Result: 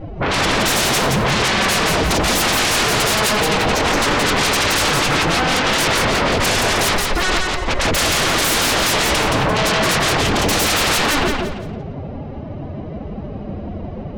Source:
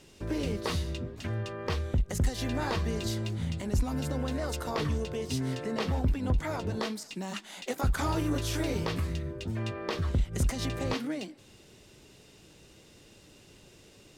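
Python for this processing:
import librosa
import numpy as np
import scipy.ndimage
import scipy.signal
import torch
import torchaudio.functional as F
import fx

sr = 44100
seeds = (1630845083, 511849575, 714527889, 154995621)

p1 = fx.lower_of_two(x, sr, delay_ms=1.0)
p2 = scipy.signal.sosfilt(scipy.signal.butter(6, 6100.0, 'lowpass', fs=sr, output='sos'), p1)
p3 = fx.pitch_keep_formants(p2, sr, semitones=11.5)
p4 = fx.env_lowpass(p3, sr, base_hz=590.0, full_db=-25.5)
p5 = fx.dynamic_eq(p4, sr, hz=2200.0, q=1.2, threshold_db=-52.0, ratio=4.0, max_db=4)
p6 = fx.over_compress(p5, sr, threshold_db=-36.0, ratio=-1.0)
p7 = p5 + (p6 * librosa.db_to_amplitude(1.0))
p8 = fx.hum_notches(p7, sr, base_hz=60, count=4)
p9 = fx.fold_sine(p8, sr, drive_db=19, ceiling_db=-15.5)
y = p9 + fx.echo_feedback(p9, sr, ms=172, feedback_pct=31, wet_db=-3.0, dry=0)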